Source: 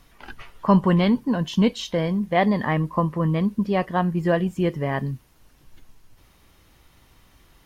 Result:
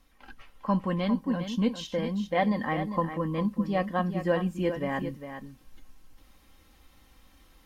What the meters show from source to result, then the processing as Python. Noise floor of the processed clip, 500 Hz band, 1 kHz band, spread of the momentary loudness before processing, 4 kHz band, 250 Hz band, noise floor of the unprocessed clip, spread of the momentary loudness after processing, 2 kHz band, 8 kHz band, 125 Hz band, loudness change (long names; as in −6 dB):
−60 dBFS, −5.5 dB, −5.5 dB, 7 LU, −7.0 dB, −7.0 dB, −57 dBFS, 6 LU, −5.5 dB, can't be measured, −9.0 dB, −6.5 dB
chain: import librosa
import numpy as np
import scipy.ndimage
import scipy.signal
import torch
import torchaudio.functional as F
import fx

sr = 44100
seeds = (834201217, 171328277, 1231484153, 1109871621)

y = x + 0.59 * np.pad(x, (int(3.8 * sr / 1000.0), 0))[:len(x)]
y = fx.rider(y, sr, range_db=3, speed_s=2.0)
y = y + 10.0 ** (-9.5 / 20.0) * np.pad(y, (int(402 * sr / 1000.0), 0))[:len(y)]
y = y * 10.0 ** (-8.0 / 20.0)